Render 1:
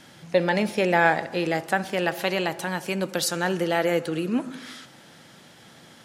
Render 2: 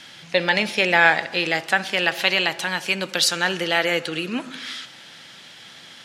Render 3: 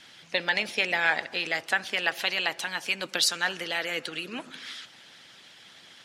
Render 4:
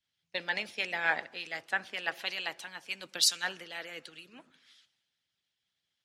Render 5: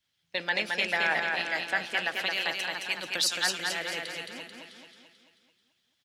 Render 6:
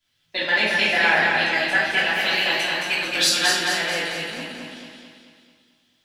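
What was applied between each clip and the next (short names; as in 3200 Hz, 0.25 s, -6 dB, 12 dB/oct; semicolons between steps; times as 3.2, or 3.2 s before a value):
bell 3200 Hz +15 dB 2.7 oct; gain -3.5 dB
harmonic-percussive split harmonic -10 dB; gain -4 dB
three-band expander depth 100%; gain -9 dB
limiter -22 dBFS, peak gain reduction 9 dB; on a send: feedback echo 0.219 s, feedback 52%, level -3.5 dB; on the sum: gain +6 dB
shoebox room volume 240 m³, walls mixed, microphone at 3 m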